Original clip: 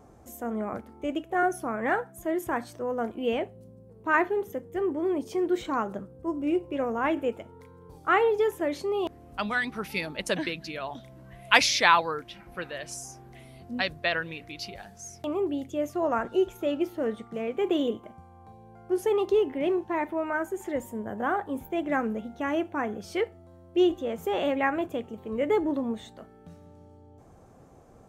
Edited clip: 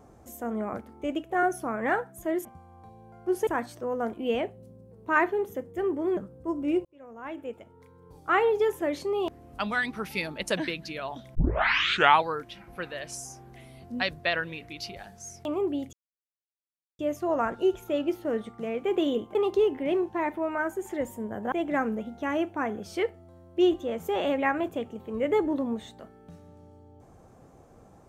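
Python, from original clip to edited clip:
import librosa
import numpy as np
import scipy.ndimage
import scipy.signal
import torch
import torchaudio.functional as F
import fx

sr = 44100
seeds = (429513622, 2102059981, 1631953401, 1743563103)

y = fx.edit(x, sr, fx.cut(start_s=5.15, length_s=0.81),
    fx.fade_in_span(start_s=6.64, length_s=1.69),
    fx.tape_start(start_s=11.14, length_s=0.88),
    fx.insert_silence(at_s=15.72, length_s=1.06),
    fx.move(start_s=18.08, length_s=1.02, to_s=2.45),
    fx.cut(start_s=21.27, length_s=0.43), tone=tone)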